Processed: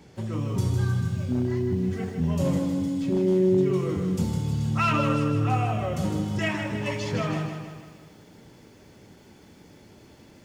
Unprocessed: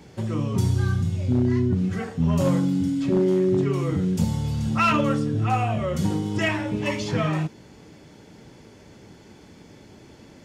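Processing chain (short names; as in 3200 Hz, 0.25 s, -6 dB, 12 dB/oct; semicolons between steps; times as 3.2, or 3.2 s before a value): 1.55–3.7 bell 1300 Hz -6.5 dB 0.7 oct; lo-fi delay 0.156 s, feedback 55%, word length 9-bit, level -6.5 dB; gain -4 dB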